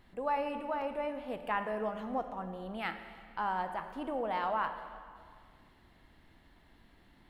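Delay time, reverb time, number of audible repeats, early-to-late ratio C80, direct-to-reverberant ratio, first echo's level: no echo audible, 2.0 s, no echo audible, 10.0 dB, 8.0 dB, no echo audible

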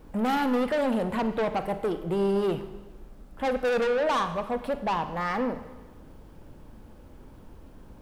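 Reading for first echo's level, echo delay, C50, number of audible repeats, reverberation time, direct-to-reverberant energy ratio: no echo audible, no echo audible, 11.0 dB, no echo audible, 1.2 s, 10.0 dB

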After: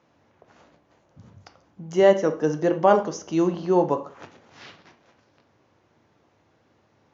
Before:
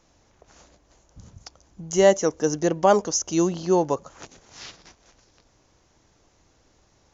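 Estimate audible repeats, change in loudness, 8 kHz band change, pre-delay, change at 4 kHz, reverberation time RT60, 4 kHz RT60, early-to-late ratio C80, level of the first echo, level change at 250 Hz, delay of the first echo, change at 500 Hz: no echo audible, 0.0 dB, can't be measured, 6 ms, −6.0 dB, 0.45 s, 0.45 s, 17.5 dB, no echo audible, +0.5 dB, no echo audible, +0.5 dB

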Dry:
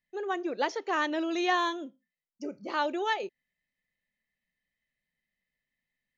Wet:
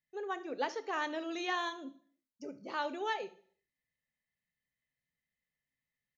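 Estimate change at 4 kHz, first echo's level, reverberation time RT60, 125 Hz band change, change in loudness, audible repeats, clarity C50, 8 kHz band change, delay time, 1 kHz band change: −6.0 dB, −19.5 dB, 0.50 s, can't be measured, −7.0 dB, 1, 16.0 dB, can't be measured, 72 ms, −7.0 dB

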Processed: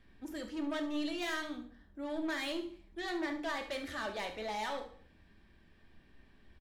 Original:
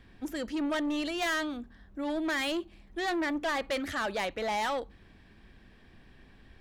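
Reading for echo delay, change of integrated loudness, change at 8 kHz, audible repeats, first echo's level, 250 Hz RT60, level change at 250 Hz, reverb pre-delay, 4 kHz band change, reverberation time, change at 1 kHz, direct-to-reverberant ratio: 71 ms, −6.5 dB, −7.5 dB, 2, −12.5 dB, 0.65 s, −5.5 dB, 3 ms, −5.5 dB, 0.50 s, −7.5 dB, 3.0 dB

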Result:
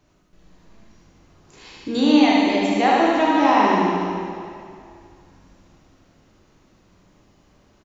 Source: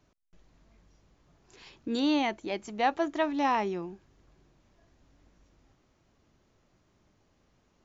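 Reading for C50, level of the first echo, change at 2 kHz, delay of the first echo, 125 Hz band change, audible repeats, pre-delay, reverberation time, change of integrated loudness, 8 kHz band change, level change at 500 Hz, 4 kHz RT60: −4.0 dB, −3.0 dB, +11.5 dB, 76 ms, +14.5 dB, 1, 7 ms, 2.3 s, +12.0 dB, can't be measured, +11.5 dB, 2.1 s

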